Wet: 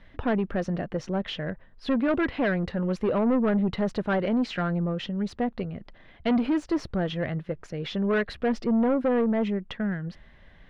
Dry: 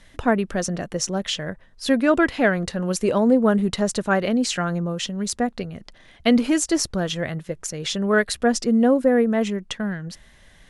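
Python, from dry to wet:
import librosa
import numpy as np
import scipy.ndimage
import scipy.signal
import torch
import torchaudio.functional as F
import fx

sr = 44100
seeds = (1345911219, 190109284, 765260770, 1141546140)

y = 10.0 ** (-18.5 / 20.0) * np.tanh(x / 10.0 ** (-18.5 / 20.0))
y = fx.air_absorb(y, sr, metres=350.0)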